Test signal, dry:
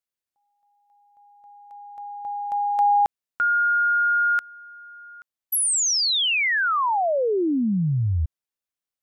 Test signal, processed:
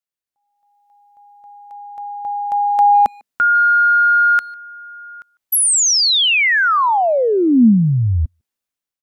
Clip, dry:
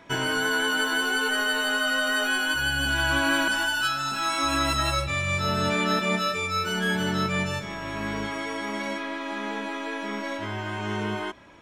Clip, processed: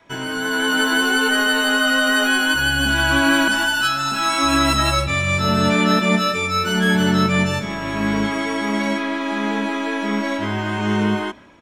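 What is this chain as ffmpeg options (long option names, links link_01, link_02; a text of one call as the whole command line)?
ffmpeg -i in.wav -filter_complex "[0:a]asplit=2[link_01][link_02];[link_02]adelay=150,highpass=300,lowpass=3400,asoftclip=type=hard:threshold=-21.5dB,volume=-25dB[link_03];[link_01][link_03]amix=inputs=2:normalize=0,adynamicequalizer=threshold=0.00562:dfrequency=230:dqfactor=2.4:tfrequency=230:tqfactor=2.4:attack=5:release=100:ratio=0.375:range=4:mode=boostabove:tftype=bell,dynaudnorm=framelen=130:gausssize=9:maxgain=9.5dB,volume=-2dB" out.wav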